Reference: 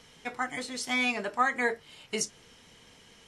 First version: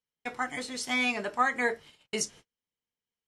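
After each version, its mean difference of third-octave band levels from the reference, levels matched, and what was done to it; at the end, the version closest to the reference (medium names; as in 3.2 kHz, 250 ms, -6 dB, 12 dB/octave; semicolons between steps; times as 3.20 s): 7.0 dB: gate -48 dBFS, range -40 dB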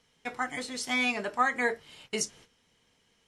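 3.5 dB: gate -52 dBFS, range -13 dB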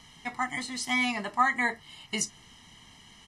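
2.5 dB: comb 1 ms, depth 75%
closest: third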